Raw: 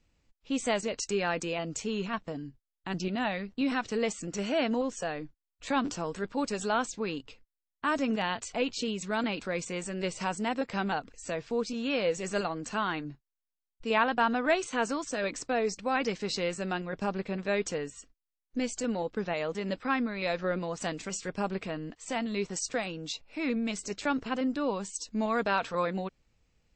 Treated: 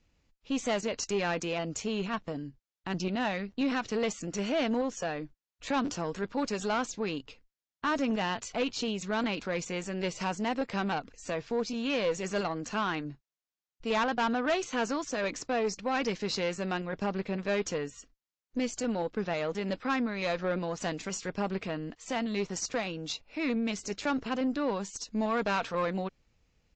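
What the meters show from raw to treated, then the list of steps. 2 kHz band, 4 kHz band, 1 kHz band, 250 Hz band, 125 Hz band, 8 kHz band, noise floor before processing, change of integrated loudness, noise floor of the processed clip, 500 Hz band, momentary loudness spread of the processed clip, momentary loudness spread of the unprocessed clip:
-1.5 dB, 0.0 dB, -1.0 dB, 0.0 dB, +1.0 dB, -1.0 dB, under -85 dBFS, -0.5 dB, under -85 dBFS, -0.5 dB, 6 LU, 8 LU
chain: valve stage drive 24 dB, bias 0.35; resampled via 16 kHz; trim +2 dB

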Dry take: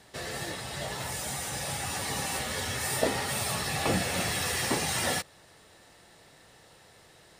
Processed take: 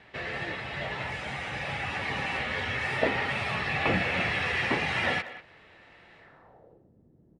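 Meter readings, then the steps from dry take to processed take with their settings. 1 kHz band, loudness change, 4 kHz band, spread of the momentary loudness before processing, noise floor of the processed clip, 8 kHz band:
+1.5 dB, +1.0 dB, -2.5 dB, 8 LU, -60 dBFS, -20.5 dB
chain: low-pass sweep 2.4 kHz -> 250 Hz, 6.17–6.90 s; speakerphone echo 190 ms, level -14 dB

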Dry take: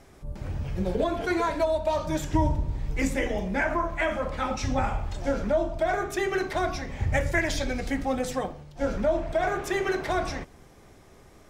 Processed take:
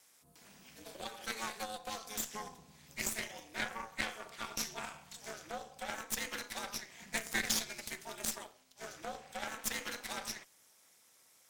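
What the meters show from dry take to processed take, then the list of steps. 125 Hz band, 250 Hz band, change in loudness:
-26.0 dB, -19.5 dB, -12.0 dB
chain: ring modulator 110 Hz; differentiator; Chebyshev shaper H 3 -22 dB, 6 -17 dB, 7 -30 dB, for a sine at -24 dBFS; trim +8.5 dB

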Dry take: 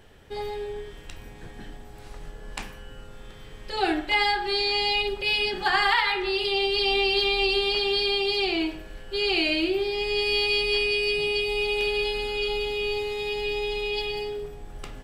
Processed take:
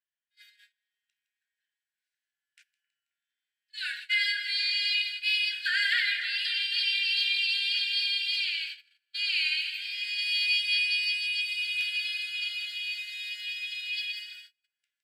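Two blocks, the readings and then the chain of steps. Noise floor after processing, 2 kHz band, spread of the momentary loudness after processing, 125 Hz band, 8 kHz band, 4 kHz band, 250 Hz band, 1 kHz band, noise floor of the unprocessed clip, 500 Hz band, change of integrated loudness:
under -85 dBFS, -1.5 dB, 10 LU, under -40 dB, -2.5 dB, -1.5 dB, under -40 dB, under -25 dB, -45 dBFS, under -40 dB, -3.0 dB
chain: two-band feedback delay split 2.1 kHz, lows 267 ms, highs 162 ms, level -9.5 dB; gate -29 dBFS, range -35 dB; brick-wall FIR high-pass 1.4 kHz; trim -2 dB

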